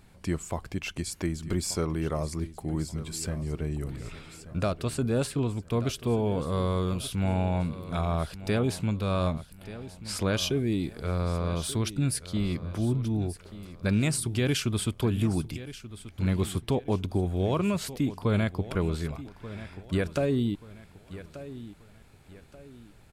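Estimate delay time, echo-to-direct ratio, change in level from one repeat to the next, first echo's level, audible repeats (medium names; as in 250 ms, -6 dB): 1183 ms, -14.5 dB, -8.5 dB, -15.0 dB, 3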